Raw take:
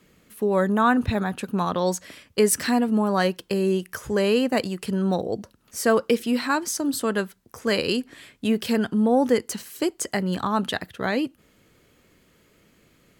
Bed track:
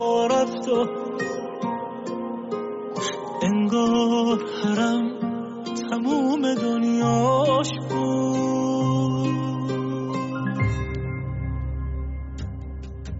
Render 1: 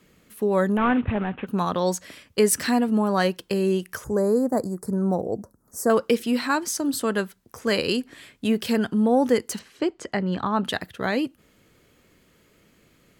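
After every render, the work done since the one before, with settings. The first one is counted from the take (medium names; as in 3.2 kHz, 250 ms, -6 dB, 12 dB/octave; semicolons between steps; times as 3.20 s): 0.77–1.47 s: CVSD coder 16 kbps; 4.04–5.90 s: Butterworth band-stop 2.9 kHz, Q 0.5; 9.59–10.65 s: Bessel low-pass 3 kHz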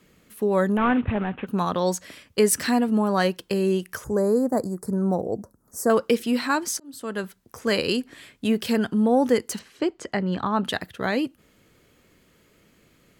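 6.59–7.24 s: slow attack 650 ms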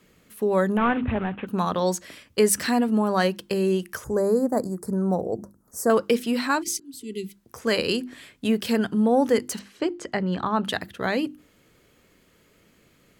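6.65–7.34 s: spectral replace 440–1900 Hz after; hum notches 50/100/150/200/250/300/350 Hz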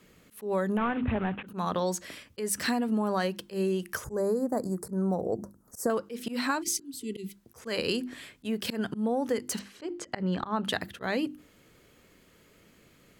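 compression 12:1, threshold -24 dBFS, peak gain reduction 11 dB; slow attack 106 ms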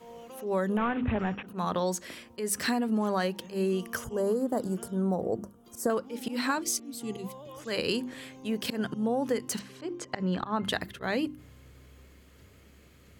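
add bed track -26.5 dB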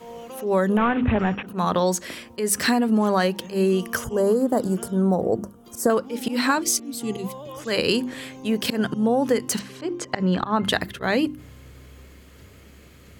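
trim +8 dB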